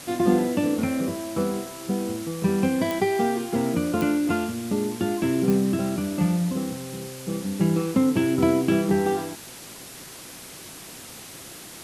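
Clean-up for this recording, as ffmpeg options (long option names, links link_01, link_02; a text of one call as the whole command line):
ffmpeg -i in.wav -af "adeclick=threshold=4,afwtdn=0.01" out.wav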